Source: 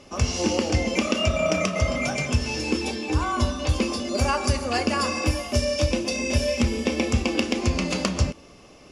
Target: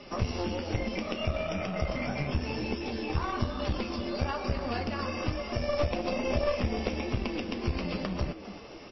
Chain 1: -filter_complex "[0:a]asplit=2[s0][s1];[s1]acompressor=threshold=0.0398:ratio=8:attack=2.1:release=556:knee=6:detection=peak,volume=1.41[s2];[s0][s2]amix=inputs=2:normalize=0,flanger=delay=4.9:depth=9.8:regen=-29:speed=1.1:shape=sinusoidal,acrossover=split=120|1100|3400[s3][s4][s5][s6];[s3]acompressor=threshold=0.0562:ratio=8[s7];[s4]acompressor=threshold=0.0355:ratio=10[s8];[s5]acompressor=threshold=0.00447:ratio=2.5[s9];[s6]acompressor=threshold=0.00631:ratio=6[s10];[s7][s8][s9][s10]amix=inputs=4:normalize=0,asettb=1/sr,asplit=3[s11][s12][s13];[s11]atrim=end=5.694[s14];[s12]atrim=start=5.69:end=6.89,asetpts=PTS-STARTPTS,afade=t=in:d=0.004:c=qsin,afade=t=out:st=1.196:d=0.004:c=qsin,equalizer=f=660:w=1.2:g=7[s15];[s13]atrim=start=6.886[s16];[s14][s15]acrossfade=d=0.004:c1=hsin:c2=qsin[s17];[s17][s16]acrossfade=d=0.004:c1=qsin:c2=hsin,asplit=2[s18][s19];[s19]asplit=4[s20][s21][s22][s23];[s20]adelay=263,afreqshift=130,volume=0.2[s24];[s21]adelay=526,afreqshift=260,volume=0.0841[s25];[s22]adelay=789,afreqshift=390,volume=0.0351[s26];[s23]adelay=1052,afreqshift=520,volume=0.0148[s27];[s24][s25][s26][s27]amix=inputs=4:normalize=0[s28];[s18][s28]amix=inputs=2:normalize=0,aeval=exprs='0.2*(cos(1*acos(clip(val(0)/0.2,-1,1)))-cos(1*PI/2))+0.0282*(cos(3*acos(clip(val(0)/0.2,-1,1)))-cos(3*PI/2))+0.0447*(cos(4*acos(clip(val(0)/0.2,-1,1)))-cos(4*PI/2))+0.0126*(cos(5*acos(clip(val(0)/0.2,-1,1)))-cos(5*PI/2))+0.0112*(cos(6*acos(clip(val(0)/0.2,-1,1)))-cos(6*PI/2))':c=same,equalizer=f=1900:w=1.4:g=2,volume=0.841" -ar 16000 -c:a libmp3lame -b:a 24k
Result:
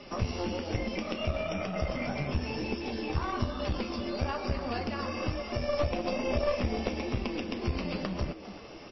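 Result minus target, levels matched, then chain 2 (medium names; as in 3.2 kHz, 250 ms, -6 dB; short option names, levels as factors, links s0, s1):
compression: peak gain reduction +9 dB
-filter_complex "[0:a]asplit=2[s0][s1];[s1]acompressor=threshold=0.126:ratio=8:attack=2.1:release=556:knee=6:detection=peak,volume=1.41[s2];[s0][s2]amix=inputs=2:normalize=0,flanger=delay=4.9:depth=9.8:regen=-29:speed=1.1:shape=sinusoidal,acrossover=split=120|1100|3400[s3][s4][s5][s6];[s3]acompressor=threshold=0.0562:ratio=8[s7];[s4]acompressor=threshold=0.0355:ratio=10[s8];[s5]acompressor=threshold=0.00447:ratio=2.5[s9];[s6]acompressor=threshold=0.00631:ratio=6[s10];[s7][s8][s9][s10]amix=inputs=4:normalize=0,asettb=1/sr,asplit=3[s11][s12][s13];[s11]atrim=end=5.694[s14];[s12]atrim=start=5.69:end=6.89,asetpts=PTS-STARTPTS,afade=t=in:d=0.004:c=qsin,afade=t=out:st=1.196:d=0.004:c=qsin,equalizer=f=660:w=1.2:g=7[s15];[s13]atrim=start=6.886[s16];[s14][s15]acrossfade=d=0.004:c1=hsin:c2=qsin[s17];[s17][s16]acrossfade=d=0.004:c1=qsin:c2=hsin,asplit=2[s18][s19];[s19]asplit=4[s20][s21][s22][s23];[s20]adelay=263,afreqshift=130,volume=0.2[s24];[s21]adelay=526,afreqshift=260,volume=0.0841[s25];[s22]adelay=789,afreqshift=390,volume=0.0351[s26];[s23]adelay=1052,afreqshift=520,volume=0.0148[s27];[s24][s25][s26][s27]amix=inputs=4:normalize=0[s28];[s18][s28]amix=inputs=2:normalize=0,aeval=exprs='0.2*(cos(1*acos(clip(val(0)/0.2,-1,1)))-cos(1*PI/2))+0.0282*(cos(3*acos(clip(val(0)/0.2,-1,1)))-cos(3*PI/2))+0.0447*(cos(4*acos(clip(val(0)/0.2,-1,1)))-cos(4*PI/2))+0.0126*(cos(5*acos(clip(val(0)/0.2,-1,1)))-cos(5*PI/2))+0.0112*(cos(6*acos(clip(val(0)/0.2,-1,1)))-cos(6*PI/2))':c=same,equalizer=f=1900:w=1.4:g=2,volume=0.841" -ar 16000 -c:a libmp3lame -b:a 24k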